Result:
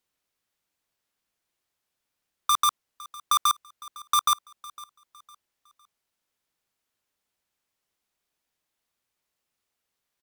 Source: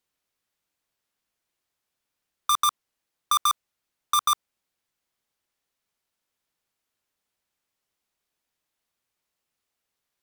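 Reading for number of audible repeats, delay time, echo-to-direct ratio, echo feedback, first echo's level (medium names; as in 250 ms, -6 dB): 2, 507 ms, -20.0 dB, 34%, -20.5 dB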